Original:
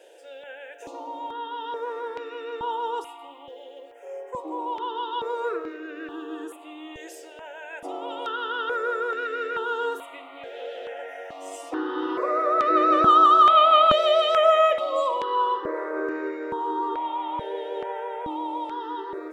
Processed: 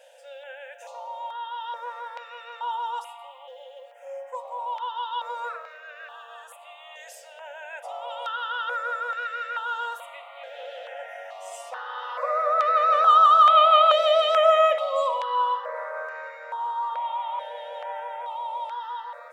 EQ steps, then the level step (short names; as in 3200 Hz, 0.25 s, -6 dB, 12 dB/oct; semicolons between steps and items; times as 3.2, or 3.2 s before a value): brick-wall FIR high-pass 490 Hz; 0.0 dB